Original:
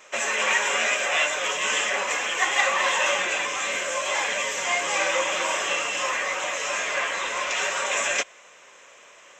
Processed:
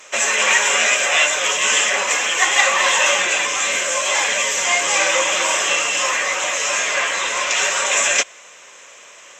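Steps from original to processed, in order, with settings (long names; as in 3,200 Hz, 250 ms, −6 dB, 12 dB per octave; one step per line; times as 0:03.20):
parametric band 8,800 Hz +7 dB 2.6 octaves
level +4.5 dB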